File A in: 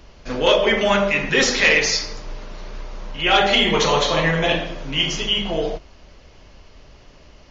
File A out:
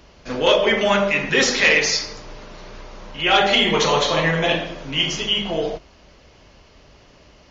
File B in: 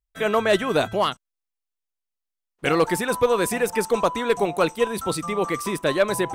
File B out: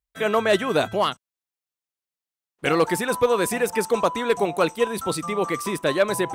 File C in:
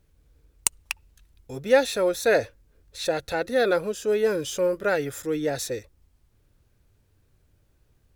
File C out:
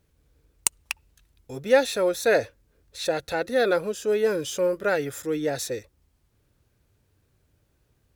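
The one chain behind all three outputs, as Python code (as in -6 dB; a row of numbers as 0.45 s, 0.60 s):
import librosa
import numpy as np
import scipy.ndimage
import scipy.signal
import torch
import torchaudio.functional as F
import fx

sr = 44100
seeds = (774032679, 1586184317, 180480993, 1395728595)

y = fx.highpass(x, sr, hz=72.0, slope=6)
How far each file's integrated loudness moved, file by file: 0.0 LU, 0.0 LU, 0.0 LU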